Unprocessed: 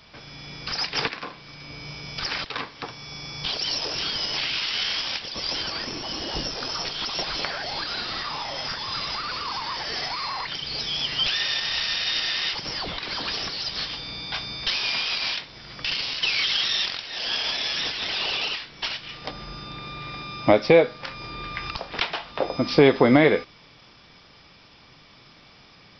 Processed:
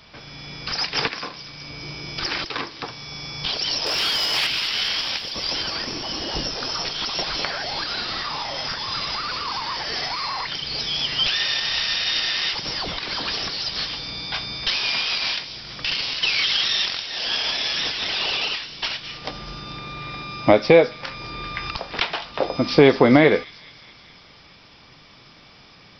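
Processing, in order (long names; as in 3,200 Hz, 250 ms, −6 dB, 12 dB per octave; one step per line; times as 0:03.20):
0:01.83–0:02.82: parametric band 340 Hz +10.5 dB 0.28 octaves
0:03.86–0:04.47: mid-hump overdrive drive 14 dB, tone 4,500 Hz, clips at −15.5 dBFS
delay with a high-pass on its return 210 ms, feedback 67%, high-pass 4,700 Hz, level −9 dB
level +2.5 dB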